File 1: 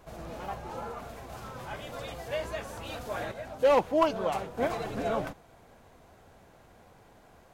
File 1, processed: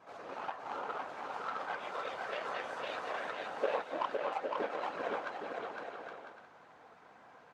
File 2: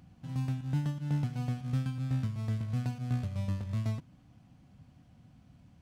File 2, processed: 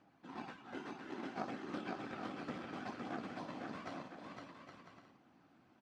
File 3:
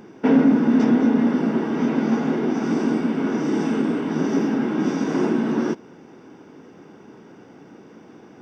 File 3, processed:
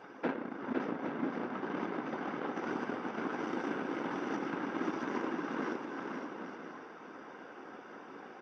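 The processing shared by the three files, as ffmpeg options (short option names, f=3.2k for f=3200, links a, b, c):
-filter_complex "[0:a]equalizer=f=1.3k:t=o:w=1.5:g=8.5,aecho=1:1:3.9:0.52,acompressor=threshold=-31dB:ratio=5,flanger=delay=15.5:depth=2.4:speed=0.58,aeval=exprs='val(0)+0.002*(sin(2*PI*50*n/s)+sin(2*PI*2*50*n/s)/2+sin(2*PI*3*50*n/s)/3+sin(2*PI*4*50*n/s)/4+sin(2*PI*5*50*n/s)/5)':c=same,afftfilt=real='hypot(re,im)*cos(2*PI*random(0))':imag='hypot(re,im)*sin(2*PI*random(1))':win_size=512:overlap=0.75,aeval=exprs='0.0531*(cos(1*acos(clip(val(0)/0.0531,-1,1)))-cos(1*PI/2))+0.00376*(cos(7*acos(clip(val(0)/0.0531,-1,1)))-cos(7*PI/2))':c=same,highpass=340,lowpass=5.2k,asplit=2[a][b];[b]aecho=0:1:510|816|999.6|1110|1176:0.631|0.398|0.251|0.158|0.1[c];[a][c]amix=inputs=2:normalize=0,volume=7.5dB"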